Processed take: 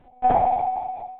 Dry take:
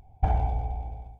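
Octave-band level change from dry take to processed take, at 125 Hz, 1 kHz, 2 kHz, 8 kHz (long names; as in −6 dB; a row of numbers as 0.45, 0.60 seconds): −12.0 dB, +14.0 dB, +7.5 dB, can't be measured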